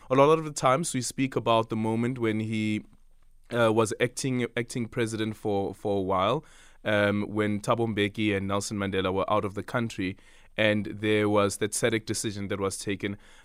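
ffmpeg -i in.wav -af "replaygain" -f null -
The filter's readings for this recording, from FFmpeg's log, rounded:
track_gain = +6.6 dB
track_peak = 0.300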